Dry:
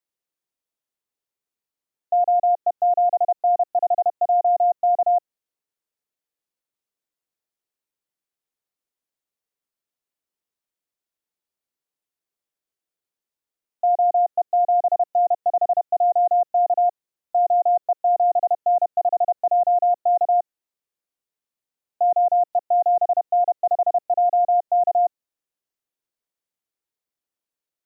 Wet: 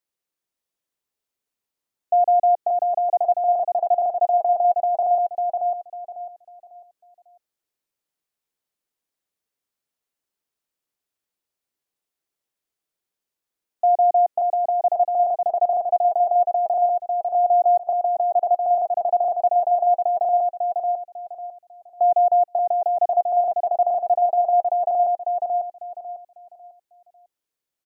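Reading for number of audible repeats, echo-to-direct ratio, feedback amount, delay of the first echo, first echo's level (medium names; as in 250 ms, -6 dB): 3, -4.0 dB, 28%, 548 ms, -4.5 dB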